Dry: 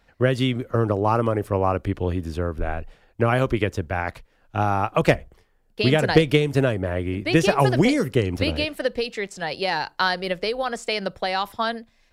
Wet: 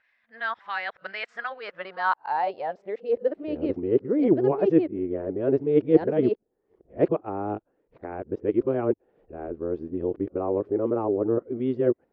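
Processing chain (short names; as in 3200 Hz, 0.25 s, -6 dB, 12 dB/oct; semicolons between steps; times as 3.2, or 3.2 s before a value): whole clip reversed; air absorption 160 m; band-pass sweep 1700 Hz -> 370 Hz, 1.44–3.43; gain +3 dB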